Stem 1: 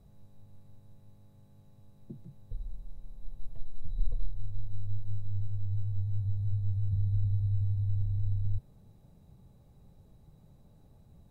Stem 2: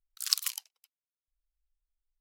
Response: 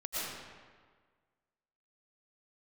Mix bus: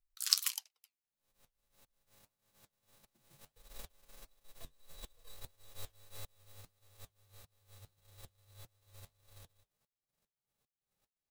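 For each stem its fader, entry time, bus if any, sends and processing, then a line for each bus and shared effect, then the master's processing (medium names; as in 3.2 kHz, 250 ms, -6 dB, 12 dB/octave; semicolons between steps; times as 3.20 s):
1.64 s -15 dB -> 2.21 s -3 dB -> 4.06 s -3 dB -> 4.65 s -11 dB -> 6.16 s -11 dB -> 6.81 s -19 dB, 1.05 s, no send, formants flattened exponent 0.3; sawtooth tremolo in dB swelling 2.5 Hz, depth 34 dB
+2.5 dB, 0.00 s, no send, none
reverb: none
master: flange 1.6 Hz, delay 2.3 ms, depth 9.4 ms, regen -61%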